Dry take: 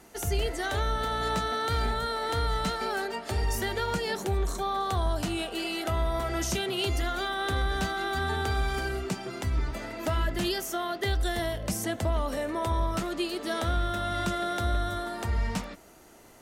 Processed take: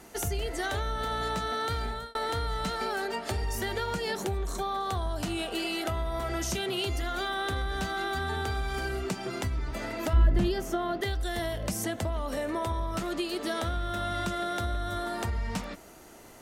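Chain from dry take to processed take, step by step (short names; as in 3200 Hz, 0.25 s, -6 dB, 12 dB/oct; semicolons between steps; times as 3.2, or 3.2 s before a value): 1.72–2.15 fade out; compressor, threshold -31 dBFS, peak gain reduction 8 dB; 10.13–11.01 tilt -3 dB/oct; gain +3 dB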